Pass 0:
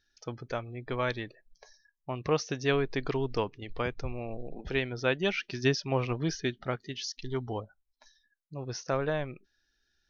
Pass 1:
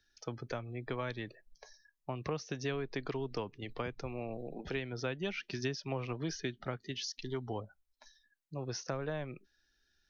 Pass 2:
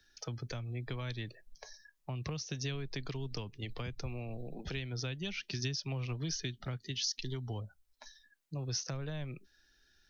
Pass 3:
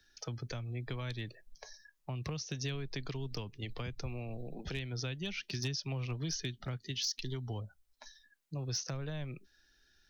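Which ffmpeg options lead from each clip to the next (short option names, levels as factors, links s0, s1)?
-filter_complex "[0:a]acrossover=split=110|250[s0][s1][s2];[s0]acompressor=threshold=0.00282:ratio=4[s3];[s1]acompressor=threshold=0.00708:ratio=4[s4];[s2]acompressor=threshold=0.0141:ratio=4[s5];[s3][s4][s5]amix=inputs=3:normalize=0"
-filter_complex "[0:a]acrossover=split=160|3000[s0][s1][s2];[s1]acompressor=threshold=0.00178:ratio=3[s3];[s0][s3][s2]amix=inputs=3:normalize=0,volume=2.11"
-af "volume=25.1,asoftclip=hard,volume=0.0398"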